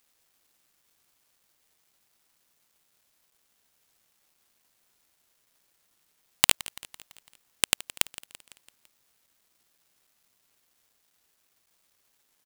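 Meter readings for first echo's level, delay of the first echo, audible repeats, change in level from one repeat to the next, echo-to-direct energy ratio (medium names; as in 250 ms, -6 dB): -18.0 dB, 168 ms, 4, -5.0 dB, -16.5 dB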